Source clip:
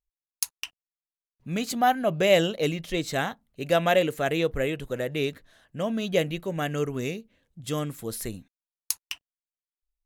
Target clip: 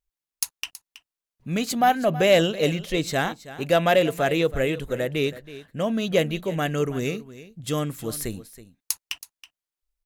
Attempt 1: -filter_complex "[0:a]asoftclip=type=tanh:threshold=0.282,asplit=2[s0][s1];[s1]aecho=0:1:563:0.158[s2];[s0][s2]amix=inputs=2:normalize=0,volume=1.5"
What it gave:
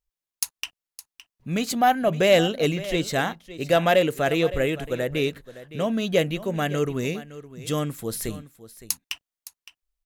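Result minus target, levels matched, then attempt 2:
echo 239 ms late
-filter_complex "[0:a]asoftclip=type=tanh:threshold=0.282,asplit=2[s0][s1];[s1]aecho=0:1:324:0.158[s2];[s0][s2]amix=inputs=2:normalize=0,volume=1.5"

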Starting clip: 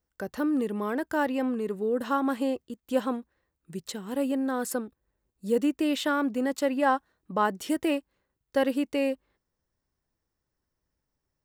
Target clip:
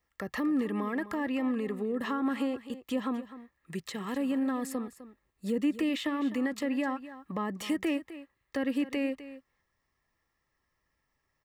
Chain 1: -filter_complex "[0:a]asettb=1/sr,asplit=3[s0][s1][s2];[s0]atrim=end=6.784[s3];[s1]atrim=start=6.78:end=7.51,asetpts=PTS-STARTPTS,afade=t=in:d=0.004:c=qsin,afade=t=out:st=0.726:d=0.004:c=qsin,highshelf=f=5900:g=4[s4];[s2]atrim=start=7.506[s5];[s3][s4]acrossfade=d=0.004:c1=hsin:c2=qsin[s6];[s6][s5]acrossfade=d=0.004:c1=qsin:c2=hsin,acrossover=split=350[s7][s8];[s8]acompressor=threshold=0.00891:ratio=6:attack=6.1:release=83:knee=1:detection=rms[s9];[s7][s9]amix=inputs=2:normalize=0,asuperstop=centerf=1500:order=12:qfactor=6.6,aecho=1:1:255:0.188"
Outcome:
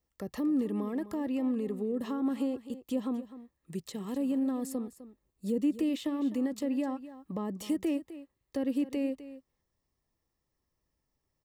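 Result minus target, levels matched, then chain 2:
2 kHz band -11.5 dB
-filter_complex "[0:a]asettb=1/sr,asplit=3[s0][s1][s2];[s0]atrim=end=6.784[s3];[s1]atrim=start=6.78:end=7.51,asetpts=PTS-STARTPTS,afade=t=in:d=0.004:c=qsin,afade=t=out:st=0.726:d=0.004:c=qsin,highshelf=f=5900:g=4[s4];[s2]atrim=start=7.506[s5];[s3][s4]acrossfade=d=0.004:c1=hsin:c2=qsin[s6];[s6][s5]acrossfade=d=0.004:c1=qsin:c2=hsin,acrossover=split=350[s7][s8];[s8]acompressor=threshold=0.00891:ratio=6:attack=6.1:release=83:knee=1:detection=rms,equalizer=f=1700:t=o:w=1.7:g=14[s9];[s7][s9]amix=inputs=2:normalize=0,asuperstop=centerf=1500:order=12:qfactor=6.6,aecho=1:1:255:0.188"

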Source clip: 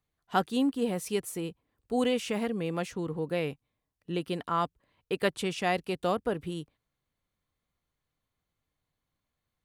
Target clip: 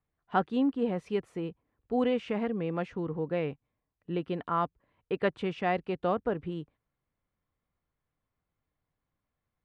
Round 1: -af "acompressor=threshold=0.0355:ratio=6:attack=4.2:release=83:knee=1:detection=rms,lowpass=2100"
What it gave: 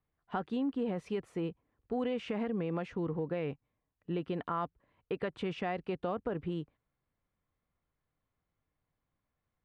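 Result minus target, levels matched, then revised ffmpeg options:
compression: peak gain reduction +11 dB
-af "lowpass=2100"

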